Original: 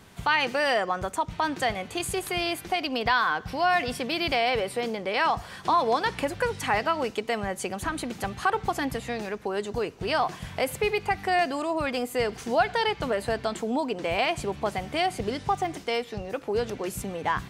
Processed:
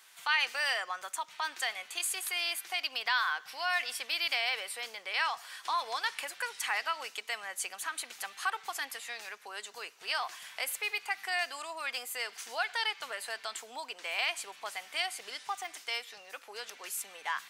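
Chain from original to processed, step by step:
high-pass filter 1,400 Hz 12 dB per octave
high-shelf EQ 7,400 Hz +6 dB
level −2.5 dB

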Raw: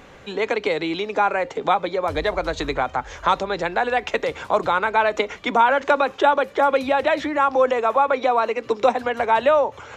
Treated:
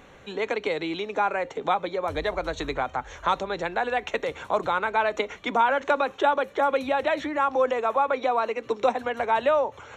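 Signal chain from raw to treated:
Butterworth band-reject 4,900 Hz, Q 6
level −5 dB

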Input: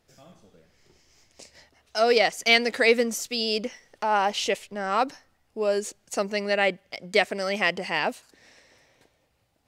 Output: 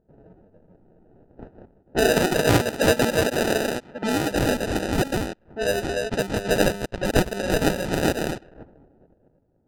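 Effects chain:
delay that plays each chunk backwards 254 ms, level −3 dB
high-shelf EQ 3,100 Hz +10.5 dB
sample-rate reduction 1,100 Hz, jitter 0%
0:02.10–0:04.31: low-shelf EQ 110 Hz −12 dB
low-pass that shuts in the quiet parts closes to 650 Hz, open at −20 dBFS

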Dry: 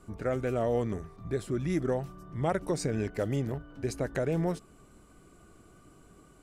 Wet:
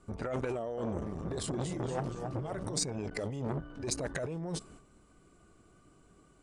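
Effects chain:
noise reduction from a noise print of the clip's start 7 dB
noise gate −59 dBFS, range −9 dB
elliptic low-pass filter 9,700 Hz, stop band 40 dB
compressor whose output falls as the input rises −39 dBFS, ratio −1
0:00.59–0:02.76: delay with pitch and tempo change per echo 183 ms, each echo −1 semitone, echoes 3, each echo −6 dB
saturating transformer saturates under 1,100 Hz
level +6 dB

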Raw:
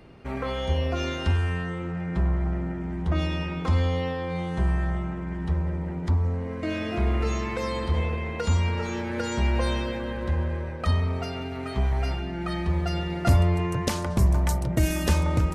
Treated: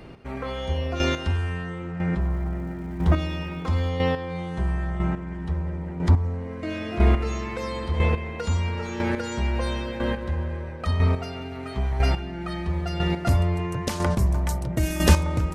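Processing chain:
0:02.20–0:03.89: surface crackle 480 per second −48 dBFS
square-wave tremolo 1 Hz, depth 60%, duty 15%
level +6.5 dB

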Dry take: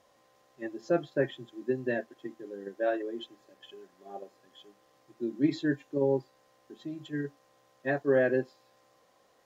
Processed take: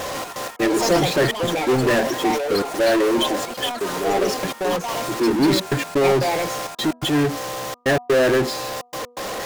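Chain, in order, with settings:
power curve on the samples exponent 0.35
in parallel at −3 dB: brickwall limiter −20.5 dBFS, peak gain reduction 7 dB
on the sum: gate pattern "xx.x.xxxx" 126 BPM −60 dB
hum removal 243.4 Hz, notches 5
delay with pitch and tempo change per echo 147 ms, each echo +5 semitones, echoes 3, each echo −6 dB

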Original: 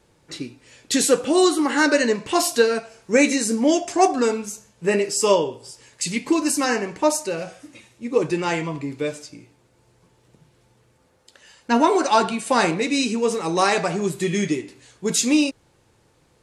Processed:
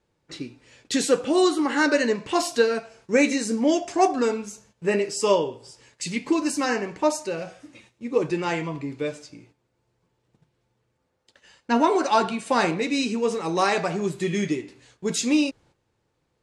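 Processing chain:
noise gate −51 dBFS, range −10 dB
high-frequency loss of the air 52 metres
level −2.5 dB

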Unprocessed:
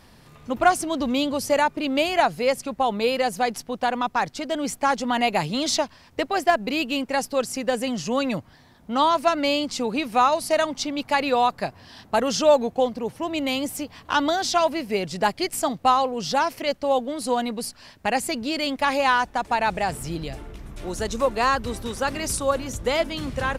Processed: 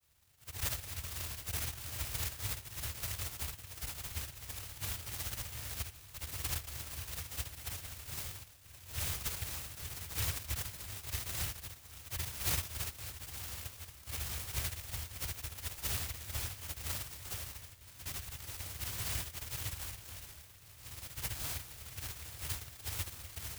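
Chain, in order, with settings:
every overlapping window played backwards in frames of 167 ms
mains-hum notches 50/100/150/200/250 Hz
on a send: echo with a time of its own for lows and highs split 1,400 Hz, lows 561 ms, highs 319 ms, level −15 dB
on the sum: dynamic equaliser 220 Hz, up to −4 dB, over −45 dBFS, Q 2.8
cochlear-implant simulation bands 1
inverse Chebyshev band-stop filter 410–4,000 Hz, stop band 80 dB
short delay modulated by noise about 2,400 Hz, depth 0.45 ms
level +14.5 dB

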